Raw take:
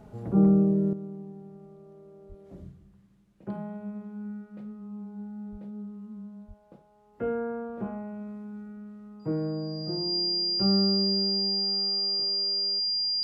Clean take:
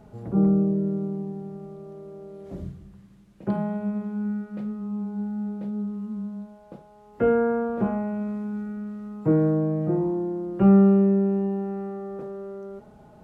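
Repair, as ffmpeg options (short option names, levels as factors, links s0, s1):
-filter_complex "[0:a]bandreject=f=4800:w=30,asplit=3[s0][s1][s2];[s0]afade=t=out:st=2.28:d=0.02[s3];[s1]highpass=f=140:w=0.5412,highpass=f=140:w=1.3066,afade=t=in:st=2.28:d=0.02,afade=t=out:st=2.4:d=0.02[s4];[s2]afade=t=in:st=2.4:d=0.02[s5];[s3][s4][s5]amix=inputs=3:normalize=0,asplit=3[s6][s7][s8];[s6]afade=t=out:st=5.51:d=0.02[s9];[s7]highpass=f=140:w=0.5412,highpass=f=140:w=1.3066,afade=t=in:st=5.51:d=0.02,afade=t=out:st=5.63:d=0.02[s10];[s8]afade=t=in:st=5.63:d=0.02[s11];[s9][s10][s11]amix=inputs=3:normalize=0,asplit=3[s12][s13][s14];[s12]afade=t=out:st=6.47:d=0.02[s15];[s13]highpass=f=140:w=0.5412,highpass=f=140:w=1.3066,afade=t=in:st=6.47:d=0.02,afade=t=out:st=6.59:d=0.02[s16];[s14]afade=t=in:st=6.59:d=0.02[s17];[s15][s16][s17]amix=inputs=3:normalize=0,asetnsamples=n=441:p=0,asendcmd='0.93 volume volume 9.5dB',volume=1"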